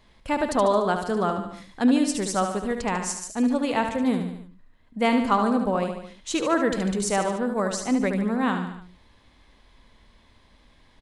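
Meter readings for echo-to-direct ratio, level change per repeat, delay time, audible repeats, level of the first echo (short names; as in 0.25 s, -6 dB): -5.5 dB, -5.0 dB, 73 ms, 4, -7.0 dB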